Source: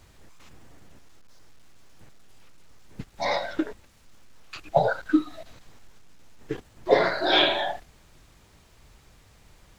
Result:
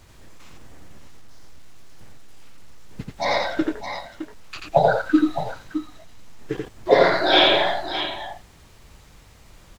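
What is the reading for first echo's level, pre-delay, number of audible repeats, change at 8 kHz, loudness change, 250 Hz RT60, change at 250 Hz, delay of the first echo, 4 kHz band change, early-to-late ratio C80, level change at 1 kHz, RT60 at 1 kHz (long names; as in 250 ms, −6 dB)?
−3.0 dB, no reverb audible, 2, can't be measured, +4.0 dB, no reverb audible, +5.5 dB, 86 ms, +5.5 dB, no reverb audible, +6.0 dB, no reverb audible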